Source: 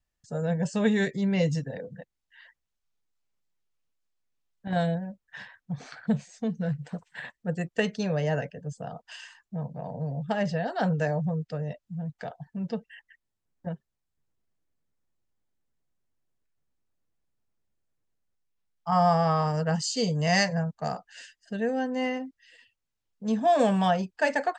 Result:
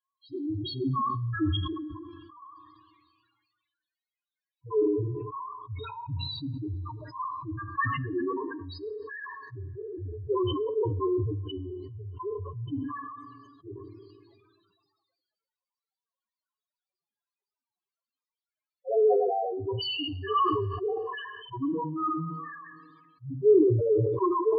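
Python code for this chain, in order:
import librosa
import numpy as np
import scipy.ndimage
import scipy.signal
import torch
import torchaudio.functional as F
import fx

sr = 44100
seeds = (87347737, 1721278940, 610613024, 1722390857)

p1 = fx.pitch_heads(x, sr, semitones=-8.5)
p2 = fx.highpass(p1, sr, hz=1100.0, slope=6)
p3 = fx.rider(p2, sr, range_db=5, speed_s=0.5)
p4 = p2 + (p3 * 10.0 ** (0.5 / 20.0))
p5 = fx.spec_topn(p4, sr, count=2)
p6 = fx.rev_double_slope(p5, sr, seeds[0], early_s=0.63, late_s=2.1, knee_db=-21, drr_db=11.5)
p7 = fx.sustainer(p6, sr, db_per_s=32.0)
y = p7 * 10.0 ** (6.0 / 20.0)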